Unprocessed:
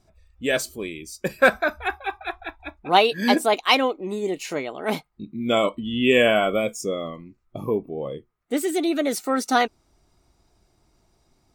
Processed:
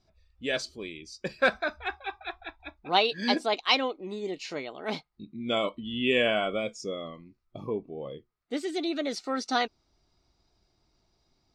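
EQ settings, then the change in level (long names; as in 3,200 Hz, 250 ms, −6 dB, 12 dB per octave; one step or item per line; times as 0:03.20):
low-pass with resonance 4,700 Hz, resonance Q 2.3
−8.0 dB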